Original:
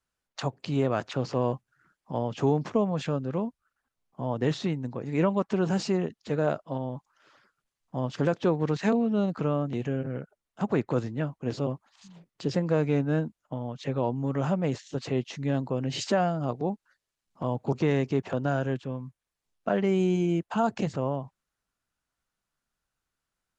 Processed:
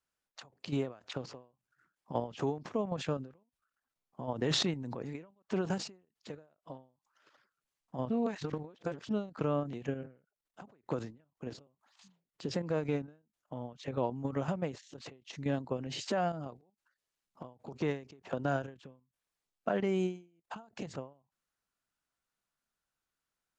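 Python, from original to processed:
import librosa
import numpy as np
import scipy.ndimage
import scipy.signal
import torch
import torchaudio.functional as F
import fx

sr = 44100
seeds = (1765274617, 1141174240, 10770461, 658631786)

y = fx.sustainer(x, sr, db_per_s=32.0, at=(4.35, 5.03))
y = fx.edit(y, sr, fx.reverse_span(start_s=8.1, length_s=0.99), tone=tone)
y = fx.low_shelf(y, sr, hz=140.0, db=-7.5)
y = fx.level_steps(y, sr, step_db=10)
y = fx.end_taper(y, sr, db_per_s=160.0)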